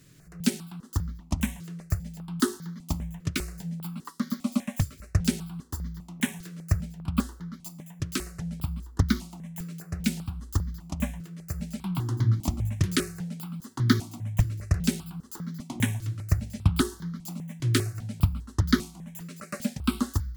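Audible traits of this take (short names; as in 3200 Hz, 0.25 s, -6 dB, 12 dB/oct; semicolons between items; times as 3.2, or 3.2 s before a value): notches that jump at a steady rate 5 Hz 220–2600 Hz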